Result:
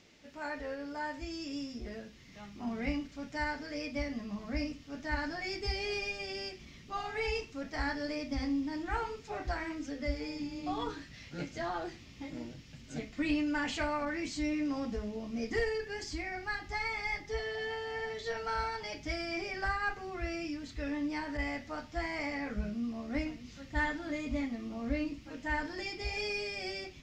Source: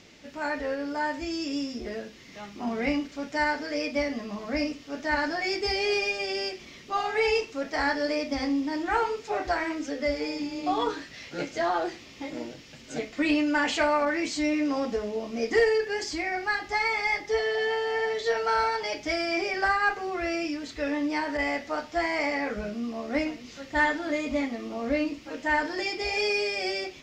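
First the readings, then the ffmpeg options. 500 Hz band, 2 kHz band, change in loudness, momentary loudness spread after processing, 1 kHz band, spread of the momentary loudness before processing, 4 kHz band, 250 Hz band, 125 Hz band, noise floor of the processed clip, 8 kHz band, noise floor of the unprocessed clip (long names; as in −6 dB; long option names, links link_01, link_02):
−11.0 dB, −9.0 dB, −8.5 dB, 9 LU, −10.0 dB, 9 LU, −8.5 dB, −6.5 dB, +3.0 dB, −53 dBFS, −8.5 dB, −48 dBFS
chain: -af "asubboost=boost=5:cutoff=190,volume=-8.5dB"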